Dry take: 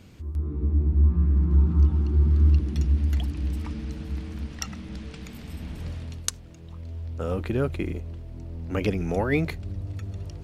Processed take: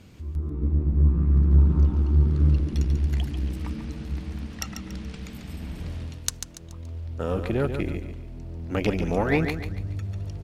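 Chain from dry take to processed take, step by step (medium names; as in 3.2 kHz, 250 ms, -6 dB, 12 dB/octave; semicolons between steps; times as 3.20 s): Chebyshev shaper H 6 -20 dB, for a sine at -5.5 dBFS; feedback delay 142 ms, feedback 35%, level -8 dB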